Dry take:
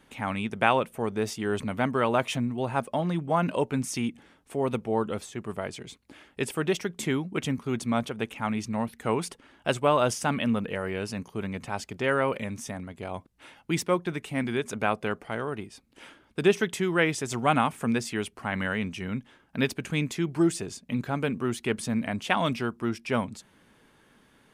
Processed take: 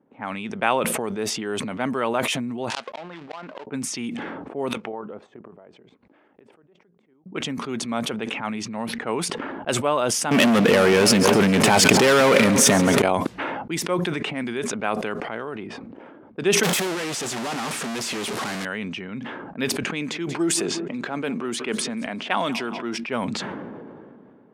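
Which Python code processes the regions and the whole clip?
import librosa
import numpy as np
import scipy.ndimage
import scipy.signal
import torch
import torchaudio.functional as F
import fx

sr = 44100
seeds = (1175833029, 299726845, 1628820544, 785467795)

y = fx.chain(x, sr, fx.dead_time(dead_ms=0.18),
    fx.weighting(curve='ITU-R 468'),
    fx.gate_flip(shuts_db=-13.0, range_db=-35), at=(2.7, 3.67))
y = fx.chain(y, sr, fx.tilt_shelf(db=-7.0, hz=780.0),
    fx.gate_flip(shuts_db=-29.0, range_db=-26),
    fx.level_steps(step_db=9), at=(4.69, 7.26))
y = fx.chain(y, sr, fx.leveller(passes=5),
    fx.echo_split(split_hz=1500.0, low_ms=275, high_ms=135, feedback_pct=52, wet_db=-14.0),
    fx.env_flatten(amount_pct=100), at=(10.31, 13.02))
y = fx.chain(y, sr, fx.clip_1bit(),
    fx.highpass(hz=56.0, slope=6), at=(16.63, 18.65))
y = fx.chain(y, sr, fx.highpass(hz=180.0, slope=12),
    fx.echo_feedback(ms=183, feedback_pct=42, wet_db=-20.5), at=(19.86, 22.97))
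y = fx.env_lowpass(y, sr, base_hz=560.0, full_db=-24.0)
y = scipy.signal.sosfilt(scipy.signal.butter(2, 200.0, 'highpass', fs=sr, output='sos'), y)
y = fx.sustainer(y, sr, db_per_s=23.0)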